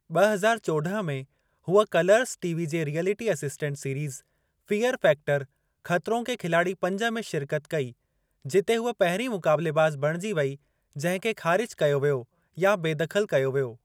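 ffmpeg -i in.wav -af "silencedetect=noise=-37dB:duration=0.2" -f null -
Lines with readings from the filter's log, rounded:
silence_start: 1.23
silence_end: 1.68 | silence_duration: 0.45
silence_start: 4.18
silence_end: 4.68 | silence_duration: 0.51
silence_start: 5.44
silence_end: 5.86 | silence_duration: 0.42
silence_start: 7.90
silence_end: 8.45 | silence_duration: 0.55
silence_start: 10.55
silence_end: 10.96 | silence_duration: 0.41
silence_start: 12.22
silence_end: 12.57 | silence_duration: 0.35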